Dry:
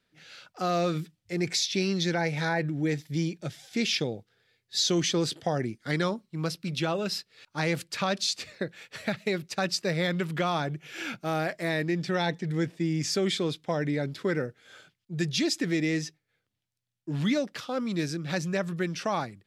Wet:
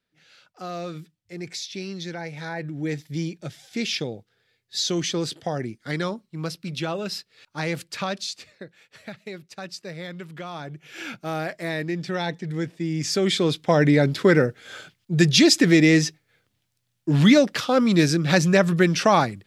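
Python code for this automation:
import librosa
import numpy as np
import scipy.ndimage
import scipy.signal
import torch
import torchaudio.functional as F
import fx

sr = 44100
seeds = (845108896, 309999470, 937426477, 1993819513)

y = fx.gain(x, sr, db=fx.line((2.39, -6.0), (2.92, 0.5), (8.05, 0.5), (8.57, -8.0), (10.49, -8.0), (10.98, 0.5), (12.81, 0.5), (13.83, 11.5)))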